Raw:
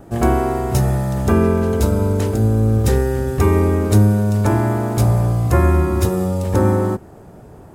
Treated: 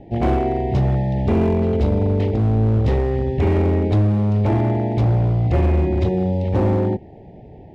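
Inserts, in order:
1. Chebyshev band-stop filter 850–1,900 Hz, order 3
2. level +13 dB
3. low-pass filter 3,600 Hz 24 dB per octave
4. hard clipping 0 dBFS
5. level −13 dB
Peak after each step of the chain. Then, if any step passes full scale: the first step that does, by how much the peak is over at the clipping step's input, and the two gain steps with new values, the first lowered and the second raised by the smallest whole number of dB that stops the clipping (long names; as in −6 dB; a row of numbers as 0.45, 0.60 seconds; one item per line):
−3.0, +10.0, +9.5, 0.0, −13.0 dBFS
step 2, 9.5 dB
step 2 +3 dB, step 5 −3 dB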